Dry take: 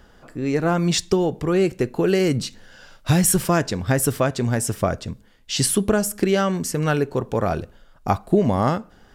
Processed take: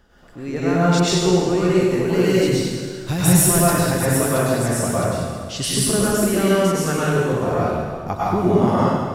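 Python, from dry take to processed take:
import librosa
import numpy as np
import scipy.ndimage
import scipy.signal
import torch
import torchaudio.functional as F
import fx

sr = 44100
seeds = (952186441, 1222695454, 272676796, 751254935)

y = fx.high_shelf(x, sr, hz=11000.0, db=7.5, at=(1.57, 3.81))
y = fx.rev_plate(y, sr, seeds[0], rt60_s=1.9, hf_ratio=0.85, predelay_ms=90, drr_db=-9.0)
y = y * librosa.db_to_amplitude(-6.5)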